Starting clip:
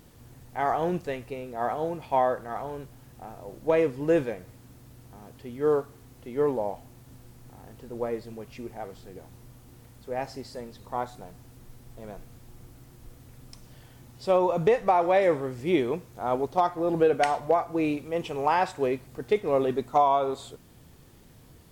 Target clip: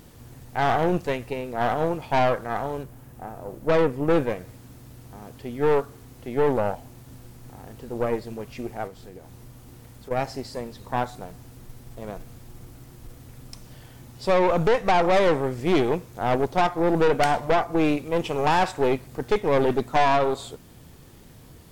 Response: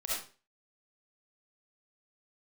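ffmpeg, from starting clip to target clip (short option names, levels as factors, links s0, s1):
-filter_complex "[0:a]asettb=1/sr,asplit=3[s0][s1][s2];[s0]atrim=end=2.834[s3];[s1]atrim=start=2.83:end=4.3,asetpts=PTS-STARTPTS,afade=t=in:d=0.004:c=qsin,afade=t=out:st=1.466:d=0.004:c=qsin,equalizer=f=4500:w=0.65:g=-6.5[s4];[s2]atrim=start=4.296[s5];[s3][s4]acrossfade=d=0.004:c1=hsin:c2=qsin[s6];[s6][s5]acrossfade=d=0.004:c1=qsin:c2=hsin,asettb=1/sr,asplit=3[s7][s8][s9];[s7]atrim=end=8.874[s10];[s8]atrim=start=8.87:end=10.11,asetpts=PTS-STARTPTS,afade=t=in:d=0.004:c=qsin,afade=t=out:st=1.236:d=0.004:c=qsin,acompressor=threshold=0.00631:ratio=6[s11];[s9]atrim=start=10.106[s12];[s10][s11]acrossfade=d=0.004:c1=hsin:c2=qsin[s13];[s13][s12]acrossfade=d=0.004:c1=qsin:c2=hsin,aeval=exprs='(tanh(17.8*val(0)+0.7)-tanh(0.7))/17.8':c=same,volume=2.82"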